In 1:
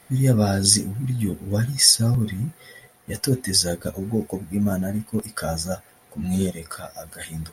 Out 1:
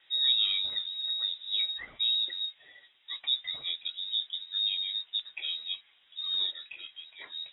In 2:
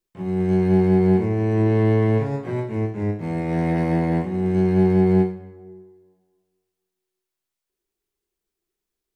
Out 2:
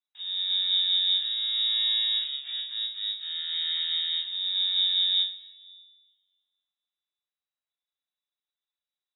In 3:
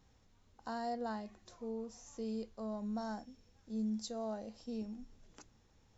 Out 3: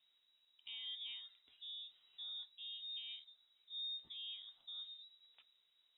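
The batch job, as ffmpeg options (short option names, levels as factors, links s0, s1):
-af "lowpass=f=3300:t=q:w=0.5098,lowpass=f=3300:t=q:w=0.6013,lowpass=f=3300:t=q:w=0.9,lowpass=f=3300:t=q:w=2.563,afreqshift=-3900,bandreject=f=96.57:t=h:w=4,bandreject=f=193.14:t=h:w=4,volume=0.376"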